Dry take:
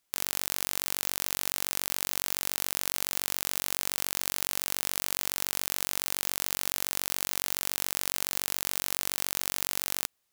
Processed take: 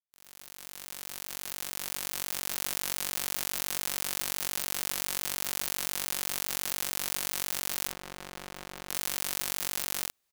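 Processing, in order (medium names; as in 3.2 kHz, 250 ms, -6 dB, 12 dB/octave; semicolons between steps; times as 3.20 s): fade-in on the opening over 2.69 s; 7.87–8.89 s: low-pass 1.2 kHz 6 dB/octave; doubling 48 ms -2.5 dB; trim -3 dB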